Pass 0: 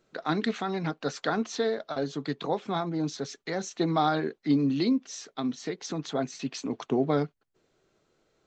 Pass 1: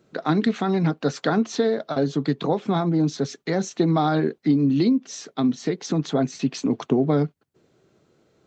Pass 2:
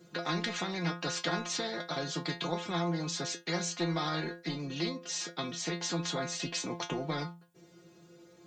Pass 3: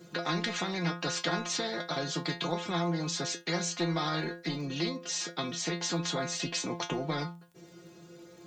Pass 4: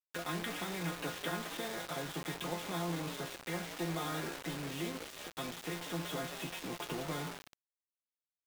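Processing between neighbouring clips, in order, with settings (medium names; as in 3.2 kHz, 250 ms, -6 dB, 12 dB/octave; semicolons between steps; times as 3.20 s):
high-pass 96 Hz; bass shelf 370 Hz +11 dB; compression, threshold -20 dBFS, peak gain reduction 8 dB; trim +4 dB
treble shelf 4.5 kHz +5.5 dB; inharmonic resonator 170 Hz, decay 0.26 s, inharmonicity 0.002; spectrum-flattening compressor 2:1
in parallel at -1.5 dB: compression, threshold -43 dBFS, peak gain reduction 15 dB; on the sum: crackle 17 per s -48 dBFS
resampled via 8 kHz; on a send: frequency-shifting echo 185 ms, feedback 63%, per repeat +120 Hz, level -11 dB; on the sum: bit crusher 6-bit; trim -7 dB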